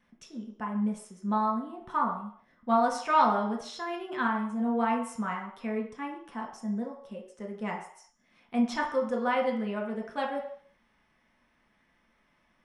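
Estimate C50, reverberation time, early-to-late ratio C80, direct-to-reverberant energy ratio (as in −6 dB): 6.5 dB, 0.60 s, 9.5 dB, −1.0 dB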